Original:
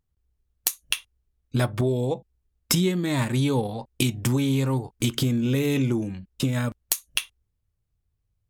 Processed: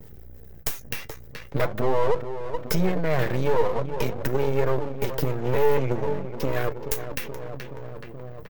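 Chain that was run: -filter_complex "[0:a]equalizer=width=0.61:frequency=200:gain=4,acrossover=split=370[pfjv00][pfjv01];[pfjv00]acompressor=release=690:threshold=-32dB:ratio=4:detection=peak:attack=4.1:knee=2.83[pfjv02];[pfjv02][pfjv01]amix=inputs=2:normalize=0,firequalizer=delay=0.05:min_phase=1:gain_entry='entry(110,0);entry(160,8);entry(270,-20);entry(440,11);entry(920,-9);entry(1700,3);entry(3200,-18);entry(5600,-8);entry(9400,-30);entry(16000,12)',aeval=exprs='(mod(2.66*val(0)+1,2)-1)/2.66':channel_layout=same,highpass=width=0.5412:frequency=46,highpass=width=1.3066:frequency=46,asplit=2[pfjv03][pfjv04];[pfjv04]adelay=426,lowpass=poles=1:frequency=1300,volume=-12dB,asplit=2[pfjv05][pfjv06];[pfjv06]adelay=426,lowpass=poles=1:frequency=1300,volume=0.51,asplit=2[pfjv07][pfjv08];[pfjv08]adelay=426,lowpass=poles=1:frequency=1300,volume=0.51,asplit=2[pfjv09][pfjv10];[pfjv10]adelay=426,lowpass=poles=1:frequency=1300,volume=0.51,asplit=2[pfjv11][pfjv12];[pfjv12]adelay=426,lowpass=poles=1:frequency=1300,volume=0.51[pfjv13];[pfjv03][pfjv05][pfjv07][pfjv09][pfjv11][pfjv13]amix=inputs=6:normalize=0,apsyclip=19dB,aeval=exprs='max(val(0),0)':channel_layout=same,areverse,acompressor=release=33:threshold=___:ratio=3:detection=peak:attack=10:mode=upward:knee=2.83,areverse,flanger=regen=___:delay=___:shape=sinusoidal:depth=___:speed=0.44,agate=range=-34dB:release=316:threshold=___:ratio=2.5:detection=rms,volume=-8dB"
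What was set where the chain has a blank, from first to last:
-18dB, 57, 2.2, 6.8, -35dB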